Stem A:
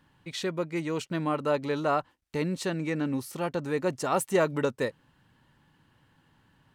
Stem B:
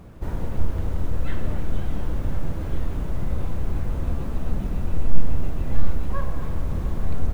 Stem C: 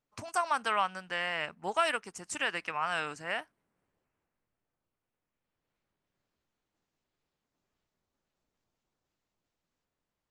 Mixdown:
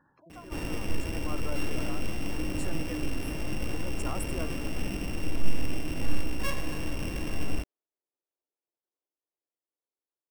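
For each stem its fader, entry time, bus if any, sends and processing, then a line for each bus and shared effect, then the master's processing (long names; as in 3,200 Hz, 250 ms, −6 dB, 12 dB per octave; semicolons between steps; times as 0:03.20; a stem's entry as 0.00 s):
+1.0 dB, 0.00 s, bus A, no send, transient designer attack −6 dB, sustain +7 dB; flat-topped bell 3,700 Hz −14.5 dB; tremolo with a sine in dB 0.71 Hz, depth 21 dB
+2.5 dB, 0.30 s, no bus, no send, samples sorted by size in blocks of 16 samples; parametric band 300 Hz +10.5 dB 0.26 octaves; tuned comb filter 51 Hz, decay 0.2 s, harmonics all, mix 60%
−10.5 dB, 0.00 s, bus A, no send, running median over 5 samples; Butterworth high-pass 310 Hz 36 dB per octave; tilt shelving filter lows +8.5 dB, about 640 Hz; automatic ducking −8 dB, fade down 0.55 s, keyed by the first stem
bus A: 0.0 dB, gate on every frequency bin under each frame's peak −20 dB strong; downward compressor, threshold −36 dBFS, peak gain reduction 13 dB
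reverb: not used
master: low-shelf EQ 200 Hz −10 dB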